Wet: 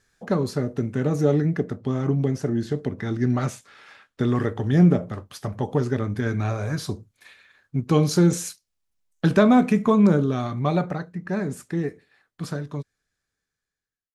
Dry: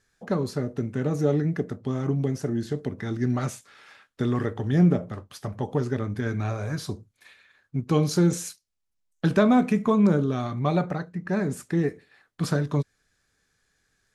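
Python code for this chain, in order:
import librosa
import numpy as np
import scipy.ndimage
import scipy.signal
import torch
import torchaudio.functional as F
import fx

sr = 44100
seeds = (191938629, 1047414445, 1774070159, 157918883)

y = fx.fade_out_tail(x, sr, length_s=4.16)
y = fx.high_shelf(y, sr, hz=7200.0, db=-6.5, at=(1.47, 4.29))
y = y * 10.0 ** (3.0 / 20.0)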